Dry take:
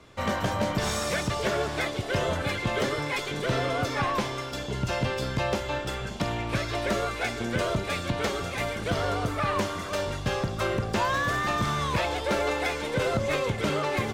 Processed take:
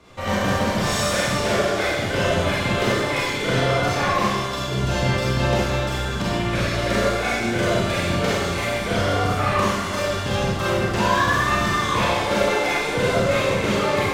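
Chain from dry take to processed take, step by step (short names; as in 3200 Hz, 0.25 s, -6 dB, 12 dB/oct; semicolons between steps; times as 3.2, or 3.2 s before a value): Schroeder reverb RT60 1.2 s, combs from 31 ms, DRR -6.5 dB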